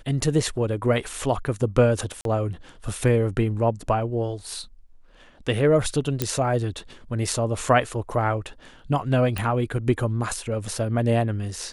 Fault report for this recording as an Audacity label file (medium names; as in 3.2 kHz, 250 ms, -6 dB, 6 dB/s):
2.210000	2.250000	dropout 42 ms
6.220000	6.220000	pop -7 dBFS
9.380000	9.380000	pop